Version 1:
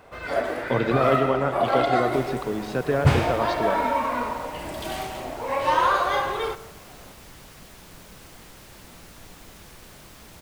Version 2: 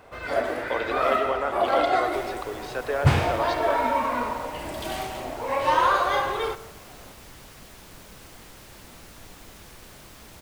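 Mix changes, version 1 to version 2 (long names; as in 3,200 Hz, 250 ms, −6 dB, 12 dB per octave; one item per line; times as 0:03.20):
speech: add Bessel high-pass filter 550 Hz, order 4
master: add parametric band 170 Hz −3.5 dB 0.32 octaves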